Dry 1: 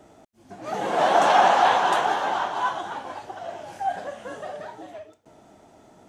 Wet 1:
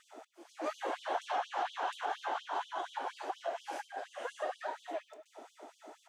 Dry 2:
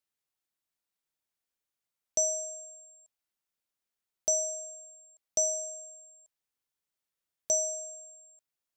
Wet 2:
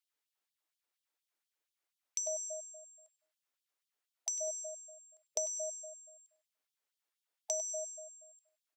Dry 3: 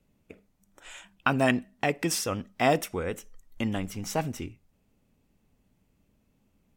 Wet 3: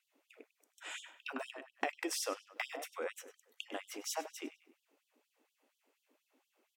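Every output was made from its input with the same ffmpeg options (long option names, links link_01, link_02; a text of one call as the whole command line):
ffmpeg -i in.wav -filter_complex "[0:a]highshelf=frequency=3900:gain=-5.5,acompressor=threshold=-35dB:ratio=8,asplit=2[link_01][link_02];[link_02]adelay=99,lowpass=frequency=4200:poles=1,volume=-11dB,asplit=2[link_03][link_04];[link_04]adelay=99,lowpass=frequency=4200:poles=1,volume=0.41,asplit=2[link_05][link_06];[link_06]adelay=99,lowpass=frequency=4200:poles=1,volume=0.41,asplit=2[link_07][link_08];[link_08]adelay=99,lowpass=frequency=4200:poles=1,volume=0.41[link_09];[link_01][link_03][link_05][link_07][link_09]amix=inputs=5:normalize=0,afftfilt=real='re*gte(b*sr/1024,240*pow(3000/240,0.5+0.5*sin(2*PI*4.2*pts/sr)))':imag='im*gte(b*sr/1024,240*pow(3000/240,0.5+0.5*sin(2*PI*4.2*pts/sr)))':win_size=1024:overlap=0.75,volume=3dB" out.wav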